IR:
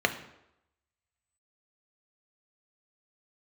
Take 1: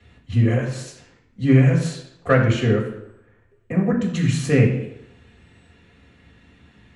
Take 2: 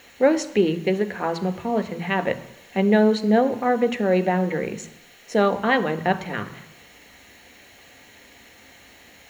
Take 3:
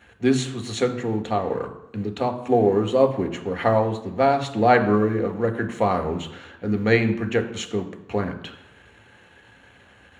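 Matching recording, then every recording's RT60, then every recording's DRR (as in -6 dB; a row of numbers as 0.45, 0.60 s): 3; 0.85, 0.85, 0.85 s; -3.0, 10.5, 6.0 dB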